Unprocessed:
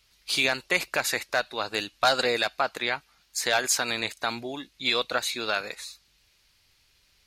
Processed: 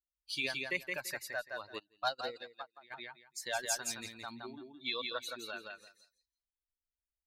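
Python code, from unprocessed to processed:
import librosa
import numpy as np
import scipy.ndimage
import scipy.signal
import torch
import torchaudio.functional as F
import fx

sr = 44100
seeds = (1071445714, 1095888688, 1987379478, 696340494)

y = fx.bin_expand(x, sr, power=2.0)
y = fx.echo_feedback(y, sr, ms=169, feedback_pct=18, wet_db=-4)
y = fx.upward_expand(y, sr, threshold_db=-36.0, expansion=2.5, at=(1.78, 2.9), fade=0.02)
y = y * 10.0 ** (-8.5 / 20.0)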